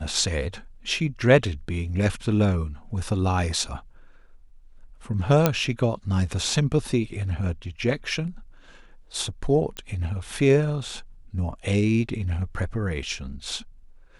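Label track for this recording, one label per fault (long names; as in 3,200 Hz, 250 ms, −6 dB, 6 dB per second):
5.460000	5.460000	click −4 dBFS
9.770000	9.770000	click −18 dBFS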